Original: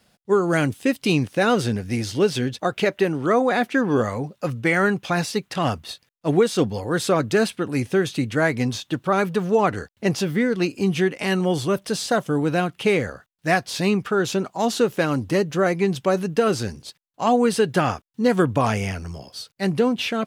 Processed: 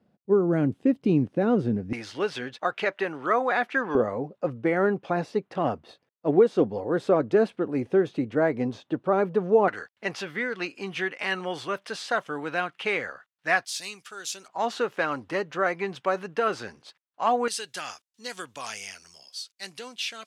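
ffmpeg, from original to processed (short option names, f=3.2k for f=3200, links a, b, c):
-af "asetnsamples=n=441:p=0,asendcmd='1.93 bandpass f 1300;3.95 bandpass f 480;9.68 bandpass f 1600;13.65 bandpass f 7600;14.48 bandpass f 1300;17.48 bandpass f 6100',bandpass=f=260:t=q:w=0.87:csg=0"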